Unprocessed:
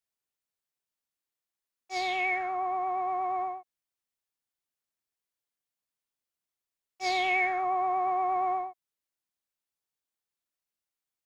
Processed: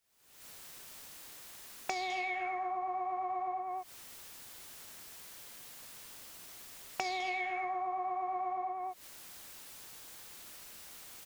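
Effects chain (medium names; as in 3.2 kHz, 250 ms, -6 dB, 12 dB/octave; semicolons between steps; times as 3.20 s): recorder AGC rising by 66 dB/s; on a send: delay 202 ms -7 dB; on the sum: compression 8:1, threshold -43 dBFS, peak gain reduction 20 dB; trim +8.5 dB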